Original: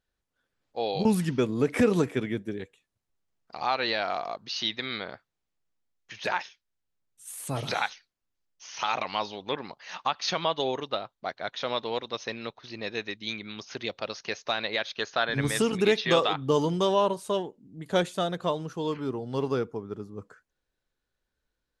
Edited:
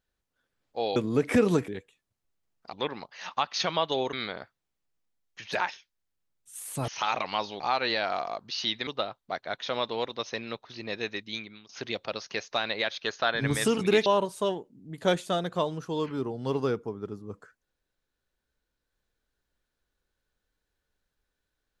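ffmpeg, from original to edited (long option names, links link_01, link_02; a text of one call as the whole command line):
ffmpeg -i in.wav -filter_complex "[0:a]asplit=10[link_01][link_02][link_03][link_04][link_05][link_06][link_07][link_08][link_09][link_10];[link_01]atrim=end=0.962[link_11];[link_02]atrim=start=1.408:end=2.132[link_12];[link_03]atrim=start=2.528:end=3.582[link_13];[link_04]atrim=start=9.408:end=10.812[link_14];[link_05]atrim=start=4.848:end=7.602[link_15];[link_06]atrim=start=8.688:end=9.412[link_16];[link_07]atrim=start=3.578:end=4.852[link_17];[link_08]atrim=start=10.808:end=13.63,asetpts=PTS-STARTPTS,afade=type=out:start_time=2.382:duration=0.44:silence=0.0749894[link_18];[link_09]atrim=start=13.63:end=16.002,asetpts=PTS-STARTPTS,afade=type=in:duration=0.004:curve=hsin:silence=0.0749894[link_19];[link_10]atrim=start=16.938[link_20];[link_11][link_12]acrossfade=duration=0.004:curve1=hsin:curve2=hsin[link_21];[link_21][link_13]acrossfade=duration=0.004:curve1=hsin:curve2=hsin[link_22];[link_22][link_14]acrossfade=duration=0.004:curve1=hsin:curve2=hsin[link_23];[link_23][link_15]acrossfade=duration=0.004:curve1=hsin:curve2=hsin[link_24];[link_24][link_16]acrossfade=duration=0.004:curve1=hsin:curve2=hsin[link_25];[link_25][link_17]acrossfade=duration=0.004:curve1=hsin:curve2=hsin[link_26];[link_18][link_19]concat=n=2:v=0:a=1[link_27];[link_26][link_27]acrossfade=duration=0.004:curve1=hsin:curve2=hsin[link_28];[link_28][link_20]acrossfade=duration=0.004:curve1=hsin:curve2=hsin" out.wav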